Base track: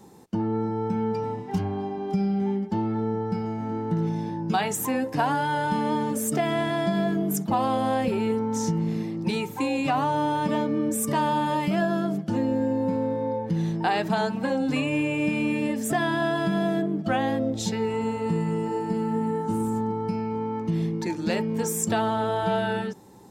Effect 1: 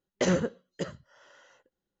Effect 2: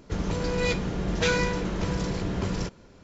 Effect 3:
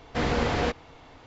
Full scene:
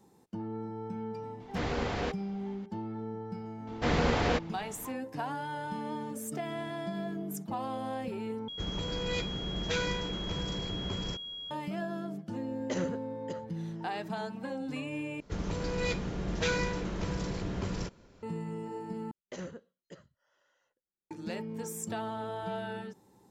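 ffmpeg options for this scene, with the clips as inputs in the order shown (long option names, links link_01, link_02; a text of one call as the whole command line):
ffmpeg -i bed.wav -i cue0.wav -i cue1.wav -i cue2.wav -filter_complex "[3:a]asplit=2[link_01][link_02];[2:a]asplit=2[link_03][link_04];[1:a]asplit=2[link_05][link_06];[0:a]volume=-12dB[link_07];[link_03]aeval=exprs='val(0)+0.0282*sin(2*PI*3300*n/s)':channel_layout=same[link_08];[link_07]asplit=4[link_09][link_10][link_11][link_12];[link_09]atrim=end=8.484[link_13];[link_08]atrim=end=3.03,asetpts=PTS-STARTPTS,volume=-8dB[link_14];[link_10]atrim=start=11.506:end=15.204[link_15];[link_04]atrim=end=3.03,asetpts=PTS-STARTPTS,volume=-6dB[link_16];[link_11]atrim=start=18.226:end=19.114[link_17];[link_06]atrim=end=2,asetpts=PTS-STARTPTS,volume=-16.5dB[link_18];[link_12]atrim=start=21.106[link_19];[link_01]atrim=end=1.26,asetpts=PTS-STARTPTS,volume=-7.5dB,afade=type=in:duration=0.004:curve=hsin,afade=type=out:start_time=1.256:duration=0.004:curve=hsin,adelay=1400[link_20];[link_02]atrim=end=1.26,asetpts=PTS-STARTPTS,volume=-2dB,afade=type=in:duration=0.004:curve=hsin,afade=type=out:start_time=1.256:duration=0.004:curve=hsin,adelay=3670[link_21];[link_05]atrim=end=2,asetpts=PTS-STARTPTS,volume=-9.5dB,afade=type=in:duration=0.004:curve=hsin,afade=type=out:start_time=1.996:duration=0.004:curve=hsin,adelay=12490[link_22];[link_13][link_14]acrossfade=duration=0.004:curve1=hsin:curve2=hsin[link_23];[link_23][link_15]acrossfade=duration=0.004:curve1=hsin:curve2=hsin[link_24];[link_24][link_16]acrossfade=duration=0.004:curve1=hsin:curve2=hsin[link_25];[link_25][link_17]acrossfade=duration=0.004:curve1=hsin:curve2=hsin[link_26];[link_26][link_18]acrossfade=duration=0.004:curve1=hsin:curve2=hsin[link_27];[link_27][link_19]acrossfade=duration=0.004:curve1=hsin:curve2=hsin[link_28];[link_28][link_20][link_21][link_22]amix=inputs=4:normalize=0" out.wav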